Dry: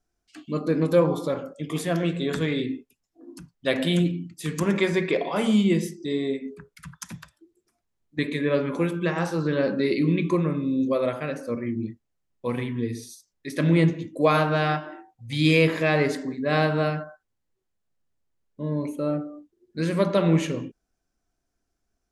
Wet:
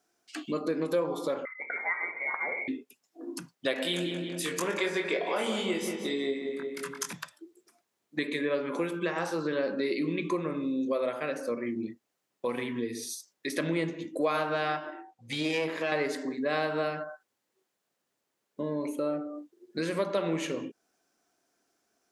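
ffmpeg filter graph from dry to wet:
-filter_complex "[0:a]asettb=1/sr,asplit=3[a][b][c];[a]atrim=end=1.454[d];[b]atrim=start=1.45:end=2.68,asetpts=PTS-STARTPTS,afade=t=in:d=0.004:c=qsin,afade=t=out:st=1.226:d=0.004:c=qsin,highpass=f=480:w=0.5412,highpass=f=480:w=1.3066,lowpass=f=2.2k:t=q:w=0.5098,lowpass=f=2.2k:t=q:w=0.6013,lowpass=f=2.2k:t=q:w=0.9,lowpass=f=2.2k:t=q:w=2.563,afreqshift=-2600[e];[c]atrim=start=2.676[f];[d][e]acrossfade=d=0.004:c1=hsin:c2=qsin[g];[g][f]acrossfade=d=0.004:c1=qsin:c2=hsin,asettb=1/sr,asplit=3[h][i][j];[h]atrim=end=3.744[k];[i]atrim=start=3.74:end=7.13,asetpts=PTS-STARTPTS,afade=t=in:d=0.004:c=qsin,afade=t=out:st=3.386:d=0.004:c=qsin,equalizer=f=110:t=o:w=2.8:g=-7.5,asplit=2[l][m];[m]adelay=22,volume=-4dB[n];[l][n]amix=inputs=2:normalize=0,atrim=end_sample=149499,asplit=2[o][p];[p]adelay=179,lowpass=f=3k:p=1,volume=-7.5dB,asplit=2[q][r];[r]adelay=179,lowpass=f=3k:p=1,volume=0.51,asplit=2[s][t];[t]adelay=179,lowpass=f=3k:p=1,volume=0.51,asplit=2[u][v];[v]adelay=179,lowpass=f=3k:p=1,volume=0.51,asplit=2[w][x];[x]adelay=179,lowpass=f=3k:p=1,volume=0.51,asplit=2[y][z];[z]adelay=179,lowpass=f=3k:p=1,volume=0.51[aa];[o][q][s][u][w][y][aa]amix=inputs=7:normalize=0,atrim=end_sample=149499[ab];[j]atrim=start=7.126[ac];[k][ab]acrossfade=d=0.004:c1=hsin:c2=qsin[ad];[ad][ac]acrossfade=d=0.004:c1=qsin:c2=hsin,asettb=1/sr,asplit=3[ae][af][ag];[ae]atrim=end=14.904[ah];[af]atrim=start=14.9:end=15.92,asetpts=PTS-STARTPTS,afade=t=in:d=0.004:c=qsin,afade=t=out:st=1.016:d=0.004:c=qsin,highshelf=f=10k:g=-7.5,aeval=exprs='(tanh(5.01*val(0)+0.7)-tanh(0.7))/5.01':c=same[ai];[ag]atrim=start=15.916[aj];[ah][ai]acrossfade=d=0.004:c1=hsin:c2=qsin[ak];[ak][aj]acrossfade=d=0.004:c1=qsin:c2=hsin,highpass=310,acompressor=threshold=-42dB:ratio=2.5,volume=8.5dB"

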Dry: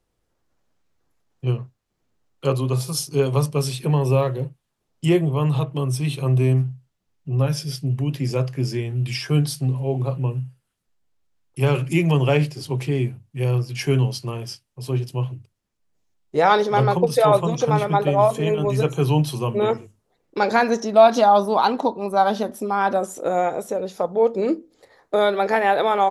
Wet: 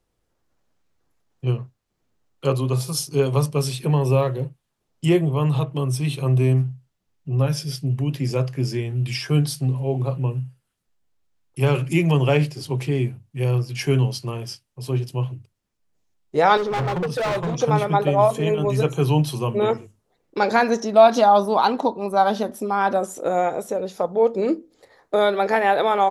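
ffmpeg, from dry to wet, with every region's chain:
-filter_complex "[0:a]asettb=1/sr,asplit=3[a][b][c];[a]atrim=end=16.574[d];[b]atrim=start=16.57:end=17.57,asetpts=PTS-STARTPTS,afade=t=in:d=0.004:c=qsin,afade=t=out:st=0.996:d=0.004:c=qsin,aemphasis=mode=reproduction:type=50kf,asoftclip=type=hard:threshold=-21dB[e];[c]atrim=start=17.566[f];[d][e]acrossfade=d=0.004:c1=hsin:c2=qsin[g];[g][f]acrossfade=d=0.004:c1=qsin:c2=hsin"

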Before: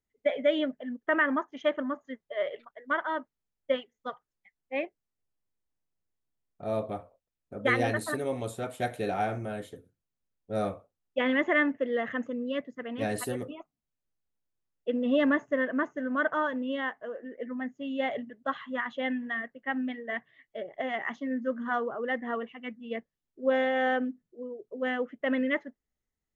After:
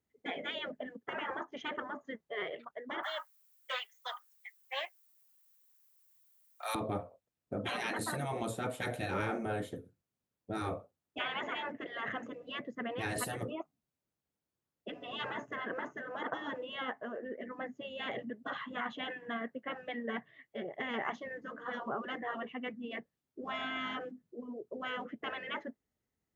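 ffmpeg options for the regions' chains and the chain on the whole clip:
-filter_complex "[0:a]asettb=1/sr,asplit=3[a][b][c];[a]atrim=end=3.034[d];[b]atrim=start=3.03:end=6.75,asetpts=PTS-STARTPTS,afade=t=in:d=0.004:c=qsin,afade=t=out:st=3.716:d=0.004:c=qsin,highpass=f=990:w=0.5412,highpass=f=990:w=1.3066,aemphasis=mode=production:type=riaa,acontrast=88[e];[c]atrim=start=6.746[f];[d][e]acrossfade=d=0.004:c1=hsin:c2=qsin[g];[g][f]acrossfade=d=0.004:c1=qsin:c2=hsin,afftfilt=real='re*lt(hypot(re,im),0.0891)':imag='im*lt(hypot(re,im),0.0891)':win_size=1024:overlap=0.75,highpass=84,tiltshelf=f=1.3k:g=3.5,volume=2.5dB"

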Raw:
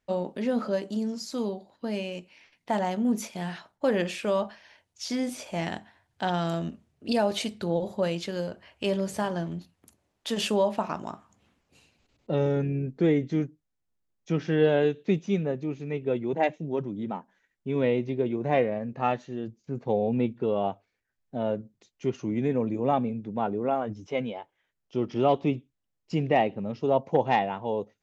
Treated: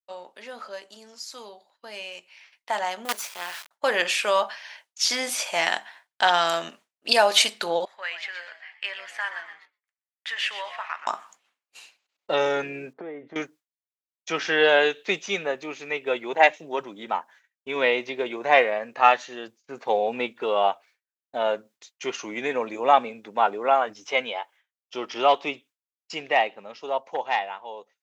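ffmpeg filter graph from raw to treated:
-filter_complex "[0:a]asettb=1/sr,asplit=3[a][b][c];[a]atrim=end=3.054[d];[b]atrim=start=3.05:end=3.71,asetpts=PTS-STARTPTS,afade=t=in:d=0.004:c=qsin,afade=t=out:st=0.656:d=0.004:c=qsin,highpass=f=260:p=1,acrusher=bits=5:dc=4:mix=0:aa=0.000001[e];[c]atrim=start=3.706[f];[d][e]acrossfade=d=0.004:c1=hsin:c2=qsin[g];[g][f]acrossfade=d=0.004:c1=qsin:c2=hsin,asettb=1/sr,asplit=3[h][i][j];[h]atrim=end=7.854[k];[i]atrim=start=7.85:end=11.07,asetpts=PTS-STARTPTS,afade=t=in:d=0.004:c=qsin,afade=t=out:st=3.216:d=0.004:c=qsin,bandpass=f=1.9k:t=q:w=3.9,asplit=5[l][m][n][o][p];[m]adelay=123,afreqshift=120,volume=-11dB[q];[n]adelay=246,afreqshift=240,volume=-20.4dB[r];[o]adelay=369,afreqshift=360,volume=-29.7dB[s];[p]adelay=492,afreqshift=480,volume=-39.1dB[t];[l][q][r][s][t]amix=inputs=5:normalize=0,atrim=end_sample=142002[u];[j]atrim=start=11.066[v];[k][u]acrossfade=d=0.004:c1=hsin:c2=qsin[w];[w][v]acrossfade=d=0.004:c1=qsin:c2=hsin,asettb=1/sr,asplit=3[x][y][z];[x]atrim=end=12.934[aa];[y]atrim=start=12.93:end=13.36,asetpts=PTS-STARTPTS,afade=t=in:d=0.004:c=qsin,afade=t=out:st=0.426:d=0.004:c=qsin,acompressor=threshold=-32dB:ratio=6:attack=3.2:release=140:knee=1:detection=peak,lowpass=1k[ab];[z]atrim=start=13.356[ac];[aa][ab]acrossfade=d=0.004:c1=hsin:c2=qsin[ad];[ad][ac]acrossfade=d=0.004:c1=qsin:c2=hsin,highpass=1k,agate=range=-33dB:threshold=-60dB:ratio=3:detection=peak,dynaudnorm=f=950:g=7:m=16dB"

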